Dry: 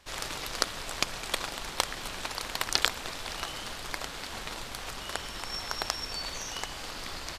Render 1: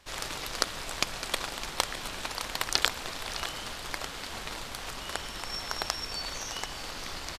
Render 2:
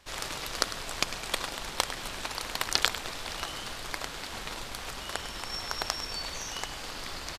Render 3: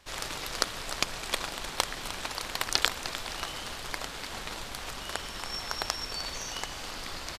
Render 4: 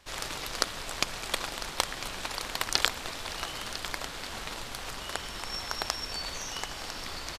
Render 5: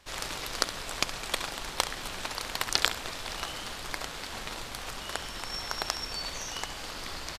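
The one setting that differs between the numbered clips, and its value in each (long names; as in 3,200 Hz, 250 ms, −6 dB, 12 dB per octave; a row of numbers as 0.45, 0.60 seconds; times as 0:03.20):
repeating echo, delay time: 609, 101, 304, 1,001, 68 milliseconds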